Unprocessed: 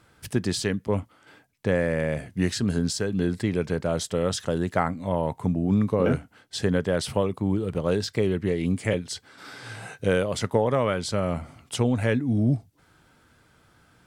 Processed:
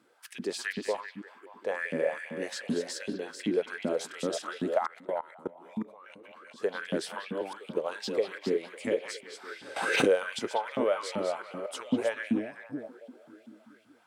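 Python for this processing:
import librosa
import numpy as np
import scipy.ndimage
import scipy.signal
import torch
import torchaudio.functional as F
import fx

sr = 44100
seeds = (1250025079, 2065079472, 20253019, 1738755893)

y = fx.reverse_delay(x, sr, ms=243, wet_db=-6.5)
y = fx.filter_lfo_highpass(y, sr, shape='saw_up', hz=2.6, low_hz=210.0, high_hz=3100.0, q=4.3)
y = fx.echo_stepped(y, sr, ms=193, hz=2900.0, octaves=-0.7, feedback_pct=70, wet_db=-7.0)
y = fx.level_steps(y, sr, step_db=21, at=(4.77, 6.61), fade=0.02)
y = scipy.signal.sosfilt(scipy.signal.butter(2, 86.0, 'highpass', fs=sr, output='sos'), y)
y = fx.pre_swell(y, sr, db_per_s=39.0, at=(9.76, 10.23))
y = F.gain(torch.from_numpy(y), -9.0).numpy()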